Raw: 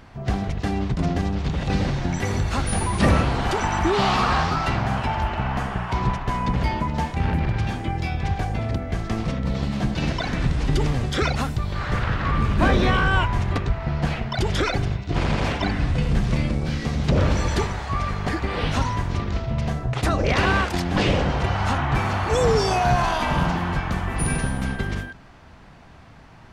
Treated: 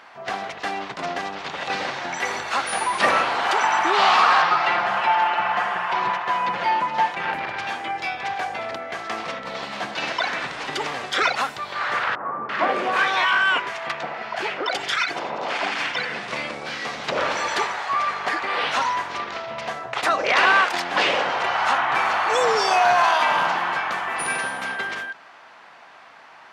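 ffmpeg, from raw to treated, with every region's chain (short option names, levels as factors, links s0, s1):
-filter_complex "[0:a]asettb=1/sr,asplit=3[s0][s1][s2];[s0]atrim=end=4.424[s3];[s1]atrim=start=4.42:end=7.31,asetpts=PTS-STARTPTS,afade=t=in:d=0.004:c=qsin,afade=t=out:st=2.886:d=0.004:c=qsin,aecho=1:1:5.7:0.59,atrim=end_sample=127449,acrossover=split=4500[s4][s5];[s5]acompressor=threshold=0.00224:ratio=4:attack=1:release=60[s6];[s4][s6]amix=inputs=2:normalize=0[s7];[s2]atrim=start=7.306[s8];[s3][s7]acrossfade=d=0.004:c1=hsin:c2=qsin[s9];[s9][s8]acrossfade=d=0.004:c1=qsin:c2=hsin,asettb=1/sr,asplit=3[s10][s11][s12];[s10]atrim=end=12.154[s13];[s11]atrim=start=12.15:end=16.28,asetpts=PTS-STARTPTS,afade=t=in:d=0.004:c=qsin,afade=t=out:st=4.126:d=0.004:c=qsin,highpass=130,bandreject=f=3900:w=25,acrossover=split=1100[s14][s15];[s15]adelay=340[s16];[s14][s16]amix=inputs=2:normalize=0,atrim=end_sample=182133[s17];[s12]atrim=start=16.276[s18];[s13][s17]acrossfade=d=0.004:c1=hsin:c2=qsin[s19];[s19][s18]acrossfade=d=0.004:c1=qsin:c2=hsin,highpass=810,highshelf=f=5100:g=-11,volume=2.51"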